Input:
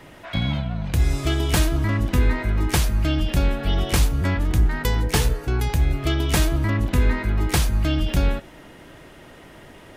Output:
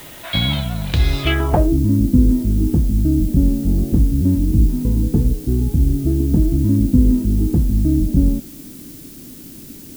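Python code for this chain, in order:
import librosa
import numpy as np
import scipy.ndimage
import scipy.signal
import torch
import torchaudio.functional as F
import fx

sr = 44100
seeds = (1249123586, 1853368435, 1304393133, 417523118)

y = fx.filter_sweep_lowpass(x, sr, from_hz=3900.0, to_hz=260.0, start_s=1.21, end_s=1.77, q=3.2)
y = fx.dmg_noise_colour(y, sr, seeds[0], colour='blue', level_db=-44.0)
y = y * librosa.db_to_amplitude(3.5)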